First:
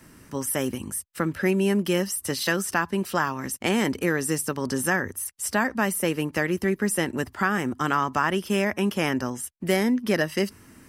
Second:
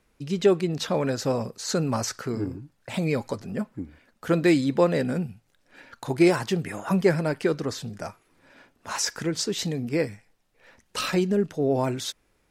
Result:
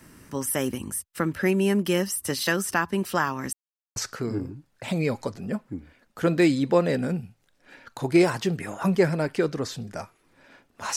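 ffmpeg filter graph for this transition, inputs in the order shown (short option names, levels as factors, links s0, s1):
-filter_complex "[0:a]apad=whole_dur=10.96,atrim=end=10.96,asplit=2[s0][s1];[s0]atrim=end=3.53,asetpts=PTS-STARTPTS,afade=t=out:st=3.526:d=0.004:c=hsin[s2];[s1]atrim=start=3.53:end=3.96,asetpts=PTS-STARTPTS,volume=0[s3];[1:a]atrim=start=2.02:end=9.02,asetpts=PTS-STARTPTS,afade=t=in:d=0.004:c=hsin[s4];[s2][s3][s4]concat=n=3:v=0:a=1"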